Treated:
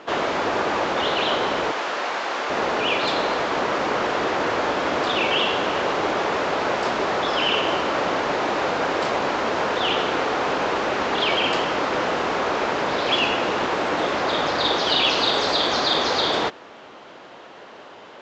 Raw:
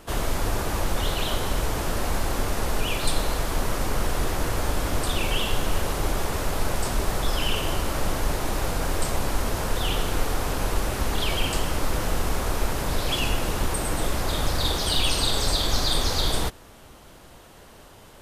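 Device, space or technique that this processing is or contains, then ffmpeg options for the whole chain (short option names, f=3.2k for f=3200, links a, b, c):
telephone: -filter_complex "[0:a]asettb=1/sr,asplit=3[a][b][c];[a]atrim=end=1.714[d];[b]atrim=start=1.71:end=2.5,asetpts=PTS-STARTPTS,afade=t=in:d=0.004:c=qsin,afade=t=out:st=0.786:d=0.004:c=qsin,highpass=f=830:p=1[e];[c]atrim=start=2.496[f];[d][e]acrossfade=d=0.004:c1=hsin:c2=qsin[g];[g][f]acrossfade=d=0.004:c1=qsin:c2=hsin,highpass=330,lowpass=3.2k,volume=9dB" -ar 16000 -c:a pcm_mulaw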